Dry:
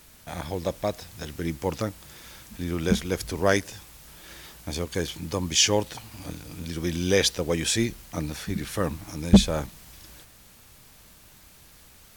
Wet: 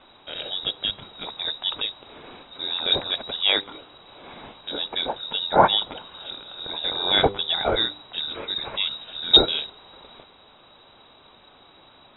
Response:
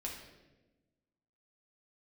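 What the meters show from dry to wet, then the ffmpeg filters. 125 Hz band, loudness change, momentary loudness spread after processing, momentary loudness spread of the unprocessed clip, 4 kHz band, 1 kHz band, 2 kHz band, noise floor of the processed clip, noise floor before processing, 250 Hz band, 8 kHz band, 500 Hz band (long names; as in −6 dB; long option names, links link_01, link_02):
−11.0 dB, +3.5 dB, 18 LU, 23 LU, +10.0 dB, +9.5 dB, +1.0 dB, −53 dBFS, −53 dBFS, −9.5 dB, below −40 dB, −0.5 dB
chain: -af "aexciter=amount=9.3:drive=3.3:freq=3000,lowpass=frequency=3300:width_type=q:width=0.5098,lowpass=frequency=3300:width_type=q:width=0.6013,lowpass=frequency=3300:width_type=q:width=0.9,lowpass=frequency=3300:width_type=q:width=2.563,afreqshift=-3900,bandreject=frequency=99.67:width_type=h:width=4,bandreject=frequency=199.34:width_type=h:width=4,bandreject=frequency=299.01:width_type=h:width=4,bandreject=frequency=398.68:width_type=h:width=4,bandreject=frequency=498.35:width_type=h:width=4"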